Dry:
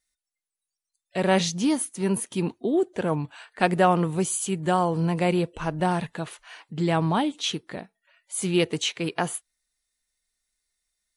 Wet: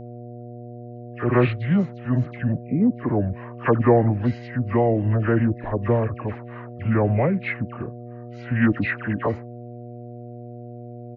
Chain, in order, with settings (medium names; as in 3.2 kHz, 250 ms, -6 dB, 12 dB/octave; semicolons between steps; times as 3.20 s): low-pass 3.6 kHz 24 dB/octave; pitch shift -7.5 st; phase dispersion lows, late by 73 ms, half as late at 1.5 kHz; mains buzz 120 Hz, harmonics 6, -41 dBFS -4 dB/octave; trim +3.5 dB